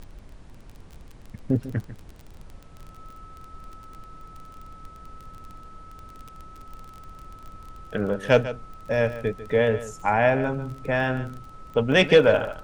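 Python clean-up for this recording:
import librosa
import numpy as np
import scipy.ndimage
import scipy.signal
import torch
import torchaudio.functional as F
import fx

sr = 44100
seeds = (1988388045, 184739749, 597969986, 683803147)

y = fx.fix_declick_ar(x, sr, threshold=6.5)
y = fx.notch(y, sr, hz=1300.0, q=30.0)
y = fx.noise_reduce(y, sr, print_start_s=0.43, print_end_s=0.93, reduce_db=24.0)
y = fx.fix_echo_inverse(y, sr, delay_ms=146, level_db=-14.0)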